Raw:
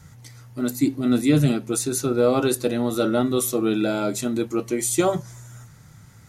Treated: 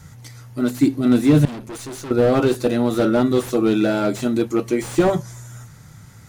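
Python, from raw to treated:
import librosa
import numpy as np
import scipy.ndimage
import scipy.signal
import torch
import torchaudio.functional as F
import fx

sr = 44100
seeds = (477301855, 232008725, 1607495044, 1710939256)

y = fx.tube_stage(x, sr, drive_db=34.0, bias=0.65, at=(1.45, 2.11))
y = fx.slew_limit(y, sr, full_power_hz=77.0)
y = y * librosa.db_to_amplitude(4.5)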